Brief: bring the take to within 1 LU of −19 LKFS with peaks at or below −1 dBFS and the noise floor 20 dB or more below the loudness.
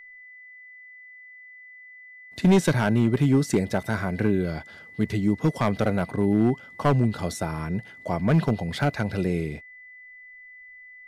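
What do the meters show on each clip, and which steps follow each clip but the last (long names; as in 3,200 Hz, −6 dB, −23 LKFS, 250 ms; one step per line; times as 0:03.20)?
share of clipped samples 0.9%; peaks flattened at −13.0 dBFS; interfering tone 2,000 Hz; level of the tone −44 dBFS; integrated loudness −24.5 LKFS; sample peak −13.0 dBFS; target loudness −19.0 LKFS
→ clipped peaks rebuilt −13 dBFS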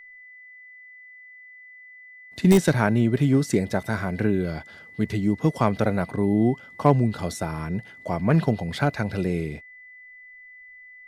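share of clipped samples 0.0%; interfering tone 2,000 Hz; level of the tone −44 dBFS
→ notch filter 2,000 Hz, Q 30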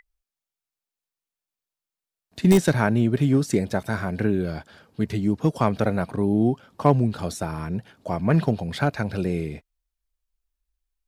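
interfering tone none found; integrated loudness −23.5 LKFS; sample peak −4.0 dBFS; target loudness −19.0 LKFS
→ level +4.5 dB
brickwall limiter −1 dBFS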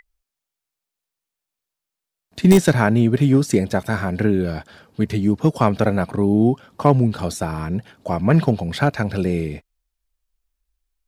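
integrated loudness −19.0 LKFS; sample peak −1.0 dBFS; background noise floor −85 dBFS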